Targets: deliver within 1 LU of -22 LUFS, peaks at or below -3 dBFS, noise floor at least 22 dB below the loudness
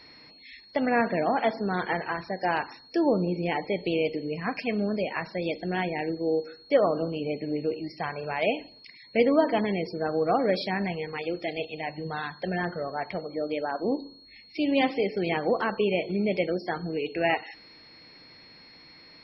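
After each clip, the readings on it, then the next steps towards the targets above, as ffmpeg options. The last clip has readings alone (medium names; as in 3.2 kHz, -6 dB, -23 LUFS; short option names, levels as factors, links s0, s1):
steady tone 4.3 kHz; tone level -51 dBFS; loudness -28.0 LUFS; peak level -10.0 dBFS; loudness target -22.0 LUFS
-> -af "bandreject=f=4300:w=30"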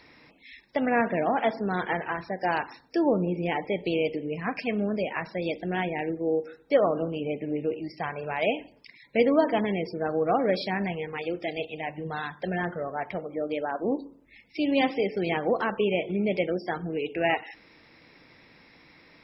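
steady tone not found; loudness -28.5 LUFS; peak level -10.0 dBFS; loudness target -22.0 LUFS
-> -af "volume=2.11"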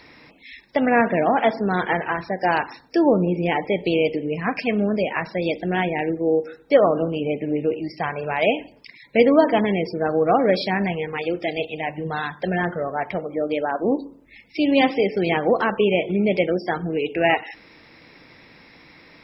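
loudness -22.0 LUFS; peak level -3.5 dBFS; noise floor -51 dBFS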